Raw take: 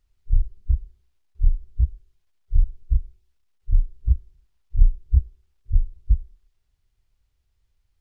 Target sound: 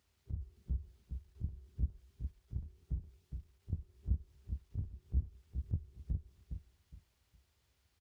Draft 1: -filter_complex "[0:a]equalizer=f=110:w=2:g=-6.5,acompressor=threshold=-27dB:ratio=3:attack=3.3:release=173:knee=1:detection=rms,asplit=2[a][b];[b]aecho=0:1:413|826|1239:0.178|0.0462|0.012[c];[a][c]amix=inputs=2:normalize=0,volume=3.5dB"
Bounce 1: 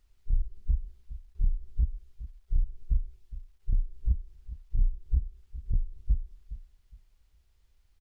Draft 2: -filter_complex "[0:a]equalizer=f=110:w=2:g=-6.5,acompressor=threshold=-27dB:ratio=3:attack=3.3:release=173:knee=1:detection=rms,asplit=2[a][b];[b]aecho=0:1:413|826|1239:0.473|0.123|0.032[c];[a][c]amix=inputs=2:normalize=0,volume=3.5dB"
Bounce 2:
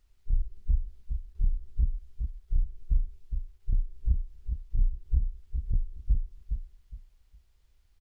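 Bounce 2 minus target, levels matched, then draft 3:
125 Hz band -3.0 dB
-filter_complex "[0:a]equalizer=f=110:w=2:g=-6.5,acompressor=threshold=-27dB:ratio=3:attack=3.3:release=173:knee=1:detection=rms,highpass=f=75:w=0.5412,highpass=f=75:w=1.3066,asplit=2[a][b];[b]aecho=0:1:413|826|1239:0.473|0.123|0.032[c];[a][c]amix=inputs=2:normalize=0,volume=3.5dB"

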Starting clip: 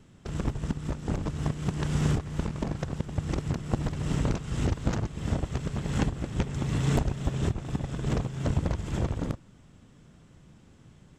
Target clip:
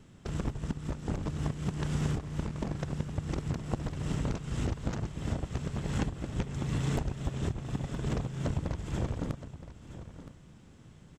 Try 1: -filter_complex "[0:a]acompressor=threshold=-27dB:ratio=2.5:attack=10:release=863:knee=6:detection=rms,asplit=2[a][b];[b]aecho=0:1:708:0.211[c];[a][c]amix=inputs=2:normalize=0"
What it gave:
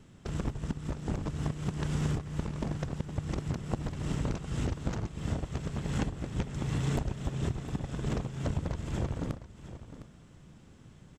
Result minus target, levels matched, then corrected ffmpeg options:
echo 0.261 s early
-filter_complex "[0:a]acompressor=threshold=-27dB:ratio=2.5:attack=10:release=863:knee=6:detection=rms,asplit=2[a][b];[b]aecho=0:1:969:0.211[c];[a][c]amix=inputs=2:normalize=0"

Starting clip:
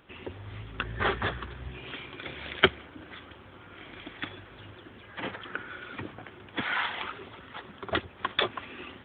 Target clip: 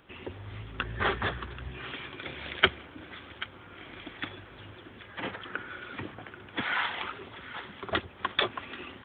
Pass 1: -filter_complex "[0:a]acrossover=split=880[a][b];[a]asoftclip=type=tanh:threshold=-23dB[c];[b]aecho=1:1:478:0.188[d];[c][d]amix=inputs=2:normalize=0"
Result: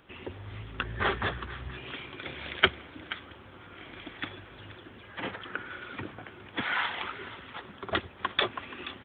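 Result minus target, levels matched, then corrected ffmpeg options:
echo 0.306 s early
-filter_complex "[0:a]acrossover=split=880[a][b];[a]asoftclip=type=tanh:threshold=-23dB[c];[b]aecho=1:1:784:0.188[d];[c][d]amix=inputs=2:normalize=0"

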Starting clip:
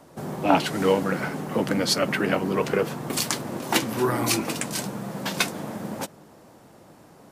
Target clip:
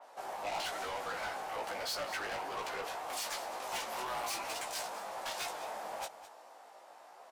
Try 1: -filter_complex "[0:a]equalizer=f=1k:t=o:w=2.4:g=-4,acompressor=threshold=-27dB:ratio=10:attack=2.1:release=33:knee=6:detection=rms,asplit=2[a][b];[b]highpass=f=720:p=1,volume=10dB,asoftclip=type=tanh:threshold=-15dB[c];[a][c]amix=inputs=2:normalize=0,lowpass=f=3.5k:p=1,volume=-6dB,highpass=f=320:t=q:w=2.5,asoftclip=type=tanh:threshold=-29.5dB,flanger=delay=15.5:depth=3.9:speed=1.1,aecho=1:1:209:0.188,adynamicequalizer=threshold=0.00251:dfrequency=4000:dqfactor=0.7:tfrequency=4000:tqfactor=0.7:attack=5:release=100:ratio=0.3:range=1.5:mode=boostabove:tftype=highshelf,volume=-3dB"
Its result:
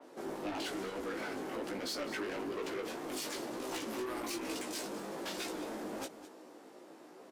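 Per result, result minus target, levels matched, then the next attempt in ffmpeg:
250 Hz band +16.0 dB; compressor: peak gain reduction +6.5 dB
-filter_complex "[0:a]equalizer=f=1k:t=o:w=2.4:g=-4,acompressor=threshold=-27dB:ratio=10:attack=2.1:release=33:knee=6:detection=rms,asplit=2[a][b];[b]highpass=f=720:p=1,volume=10dB,asoftclip=type=tanh:threshold=-15dB[c];[a][c]amix=inputs=2:normalize=0,lowpass=f=3.5k:p=1,volume=-6dB,highpass=f=740:t=q:w=2.5,asoftclip=type=tanh:threshold=-29.5dB,flanger=delay=15.5:depth=3.9:speed=1.1,aecho=1:1:209:0.188,adynamicequalizer=threshold=0.00251:dfrequency=4000:dqfactor=0.7:tfrequency=4000:tqfactor=0.7:attack=5:release=100:ratio=0.3:range=1.5:mode=boostabove:tftype=highshelf,volume=-3dB"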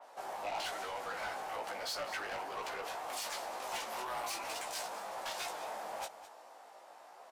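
compressor: peak gain reduction +6.5 dB
-filter_complex "[0:a]equalizer=f=1k:t=o:w=2.4:g=-4,acompressor=threshold=-19.5dB:ratio=10:attack=2.1:release=33:knee=6:detection=rms,asplit=2[a][b];[b]highpass=f=720:p=1,volume=10dB,asoftclip=type=tanh:threshold=-15dB[c];[a][c]amix=inputs=2:normalize=0,lowpass=f=3.5k:p=1,volume=-6dB,highpass=f=740:t=q:w=2.5,asoftclip=type=tanh:threshold=-29.5dB,flanger=delay=15.5:depth=3.9:speed=1.1,aecho=1:1:209:0.188,adynamicequalizer=threshold=0.00251:dfrequency=4000:dqfactor=0.7:tfrequency=4000:tqfactor=0.7:attack=5:release=100:ratio=0.3:range=1.5:mode=boostabove:tftype=highshelf,volume=-3dB"

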